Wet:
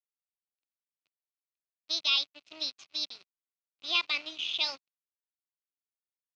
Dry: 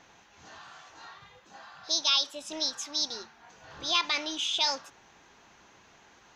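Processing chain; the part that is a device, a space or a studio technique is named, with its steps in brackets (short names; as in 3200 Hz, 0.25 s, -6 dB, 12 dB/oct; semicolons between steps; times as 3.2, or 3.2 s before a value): blown loudspeaker (crossover distortion -37.5 dBFS; speaker cabinet 140–4900 Hz, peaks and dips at 200 Hz -10 dB, 480 Hz -6 dB, 890 Hz -7 dB, 1700 Hz -9 dB, 2600 Hz +9 dB, 4200 Hz +4 dB); gain -2.5 dB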